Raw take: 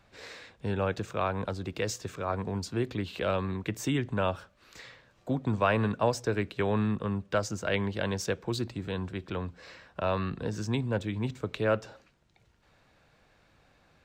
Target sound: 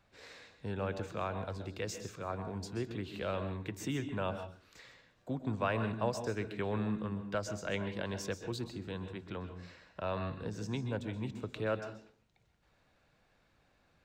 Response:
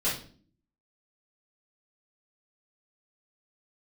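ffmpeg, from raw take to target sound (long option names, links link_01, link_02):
-filter_complex "[0:a]asplit=2[link_01][link_02];[1:a]atrim=start_sample=2205,asetrate=61740,aresample=44100,adelay=122[link_03];[link_02][link_03]afir=irnorm=-1:irlink=0,volume=-15dB[link_04];[link_01][link_04]amix=inputs=2:normalize=0,volume=-7.5dB"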